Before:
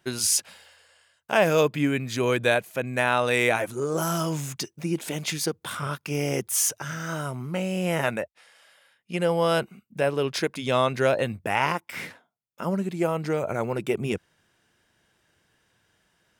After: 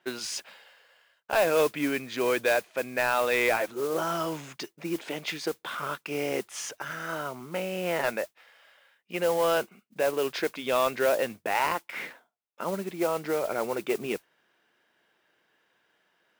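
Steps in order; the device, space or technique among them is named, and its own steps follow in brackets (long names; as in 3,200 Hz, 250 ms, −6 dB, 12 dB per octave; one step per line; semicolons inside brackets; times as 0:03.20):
carbon microphone (band-pass filter 320–3,500 Hz; soft clipping −15 dBFS, distortion −16 dB; noise that follows the level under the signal 16 dB)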